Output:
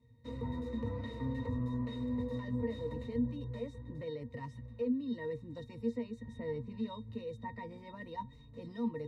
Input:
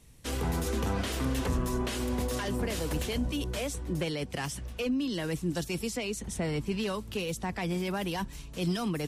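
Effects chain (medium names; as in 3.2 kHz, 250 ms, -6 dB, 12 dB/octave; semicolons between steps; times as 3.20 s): pitch-class resonator A#, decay 0.12 s; trim +3 dB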